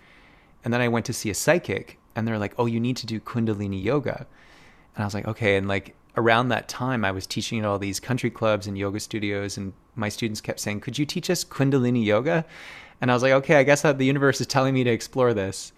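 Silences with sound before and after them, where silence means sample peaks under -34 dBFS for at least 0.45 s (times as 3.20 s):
4.23–4.97 s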